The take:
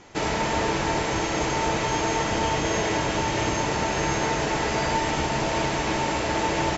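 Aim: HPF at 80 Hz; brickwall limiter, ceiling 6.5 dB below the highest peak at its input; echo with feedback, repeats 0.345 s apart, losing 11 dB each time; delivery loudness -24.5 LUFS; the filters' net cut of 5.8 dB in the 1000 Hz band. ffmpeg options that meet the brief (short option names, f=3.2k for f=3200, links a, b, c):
-af "highpass=80,equalizer=f=1k:t=o:g=-7,alimiter=limit=-20.5dB:level=0:latency=1,aecho=1:1:345|690|1035:0.282|0.0789|0.0221,volume=4.5dB"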